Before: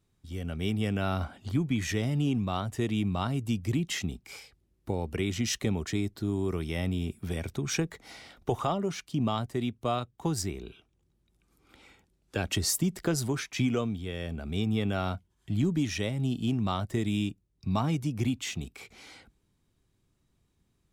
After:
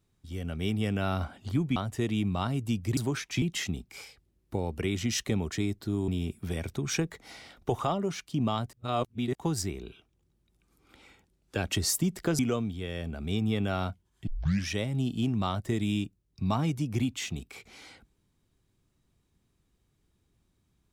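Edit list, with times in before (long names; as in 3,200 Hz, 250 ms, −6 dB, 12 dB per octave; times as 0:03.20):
0:01.76–0:02.56: remove
0:06.43–0:06.88: remove
0:09.53–0:10.15: reverse
0:13.19–0:13.64: move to 0:03.77
0:15.52: tape start 0.41 s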